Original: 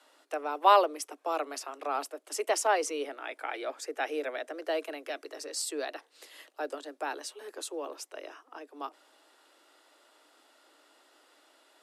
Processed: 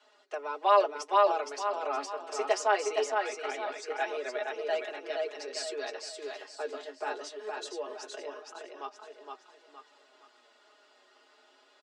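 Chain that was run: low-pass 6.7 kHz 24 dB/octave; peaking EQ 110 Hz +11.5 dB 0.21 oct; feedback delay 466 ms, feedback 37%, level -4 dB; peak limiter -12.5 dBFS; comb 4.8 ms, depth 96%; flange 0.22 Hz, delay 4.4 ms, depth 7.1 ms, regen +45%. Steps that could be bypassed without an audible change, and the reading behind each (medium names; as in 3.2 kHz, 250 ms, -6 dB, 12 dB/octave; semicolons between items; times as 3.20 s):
peaking EQ 110 Hz: input has nothing below 240 Hz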